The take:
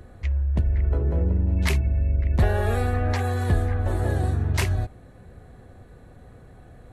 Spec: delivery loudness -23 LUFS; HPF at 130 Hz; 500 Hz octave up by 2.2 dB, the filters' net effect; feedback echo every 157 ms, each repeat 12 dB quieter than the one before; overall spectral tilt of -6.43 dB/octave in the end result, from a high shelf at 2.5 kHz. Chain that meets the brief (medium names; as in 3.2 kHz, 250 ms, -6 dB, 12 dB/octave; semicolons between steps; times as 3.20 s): high-pass 130 Hz; peaking EQ 500 Hz +3 dB; treble shelf 2.5 kHz -6.5 dB; feedback delay 157 ms, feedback 25%, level -12 dB; trim +6 dB